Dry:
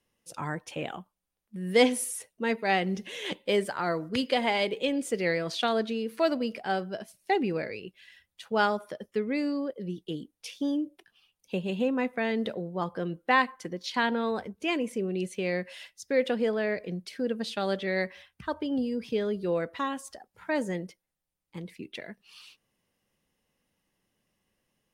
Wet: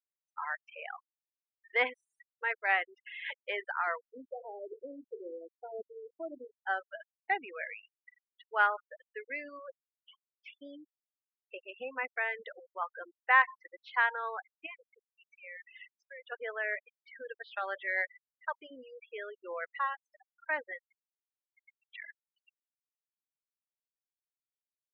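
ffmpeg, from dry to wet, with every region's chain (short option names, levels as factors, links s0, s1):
-filter_complex "[0:a]asettb=1/sr,asplit=3[s0][s1][s2];[s0]atrim=end=4.134[s3];[s1]atrim=start=4.13:end=6.67,asetpts=PTS-STARTPTS,afade=t=in:d=0.004:c=qsin,afade=t=out:st=2.536:d=0.004:c=qsin,lowpass=f=370:t=q:w=1.9,bandreject=f=46.18:t=h:w=4,bandreject=f=92.36:t=h:w=4,bandreject=f=138.54:t=h:w=4,bandreject=f=184.72:t=h:w=4,bandreject=f=230.9:t=h:w=4,bandreject=f=277.08:t=h:w=4,bandreject=f=323.26:t=h:w=4,bandreject=f=369.44:t=h:w=4,bandreject=f=415.62:t=h:w=4,bandreject=f=461.8:t=h:w=4,bandreject=f=507.98:t=h:w=4,bandreject=f=554.16:t=h:w=4[s4];[s2]atrim=start=6.666[s5];[s3][s4]acrossfade=d=0.004:c1=hsin:c2=qsin[s6];[s6][s5]acrossfade=d=0.004:c1=qsin:c2=hsin,asettb=1/sr,asplit=3[s7][s8][s9];[s7]atrim=end=9.884[s10];[s8]atrim=start=9.88:end=10.49,asetpts=PTS-STARTPTS,afade=t=in:d=0.004:c=qsin,afade=t=out:st=0.606:d=0.004:c=qsin,highpass=f=660:p=1,asoftclip=type=hard:threshold=0.01,equalizer=f=940:w=0.35:g=8[s11];[s9]atrim=start=10.486[s12];[s10][s11]acrossfade=d=0.004:c1=hsin:c2=qsin[s13];[s13][s12]acrossfade=d=0.004:c1=qsin:c2=hsin,asettb=1/sr,asplit=3[s14][s15][s16];[s14]atrim=end=14.664[s17];[s15]atrim=start=14.66:end=16.32,asetpts=PTS-STARTPTS,afade=t=in:d=0.004:c=qsin,afade=t=out:st=1.656:d=0.004:c=qsin,bandreject=f=60:t=h:w=6,bandreject=f=120:t=h:w=6,bandreject=f=180:t=h:w=6,bandreject=f=240:t=h:w=6,bandreject=f=300:t=h:w=6,bandreject=f=360:t=h:w=6,bandreject=f=420:t=h:w=6,acompressor=threshold=0.0158:ratio=6:attack=3.2:release=140:knee=1:detection=peak[s18];[s16]atrim=start=16.316[s19];[s17][s18]acrossfade=d=0.004:c1=hsin:c2=qsin[s20];[s20][s19]acrossfade=d=0.004:c1=qsin:c2=hsin,highpass=1300,afftfilt=real='re*gte(hypot(re,im),0.0158)':imag='im*gte(hypot(re,im),0.0158)':win_size=1024:overlap=0.75,lowpass=f=2100:w=0.5412,lowpass=f=2100:w=1.3066,volume=1.68"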